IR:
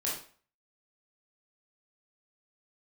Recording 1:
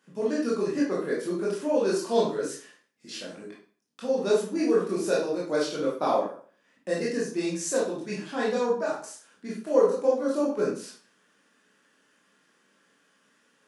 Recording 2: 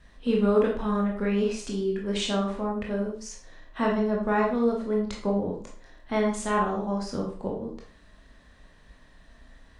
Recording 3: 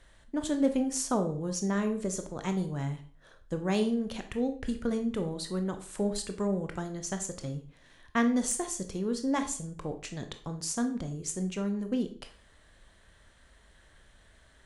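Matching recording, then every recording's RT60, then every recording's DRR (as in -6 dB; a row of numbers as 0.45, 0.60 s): 1; 0.45, 0.45, 0.45 s; -6.0, -1.5, 6.5 dB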